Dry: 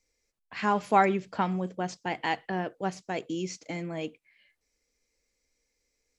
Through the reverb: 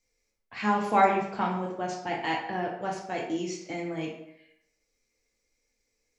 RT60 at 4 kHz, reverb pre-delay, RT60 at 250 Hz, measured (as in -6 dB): 0.55 s, 4 ms, 0.75 s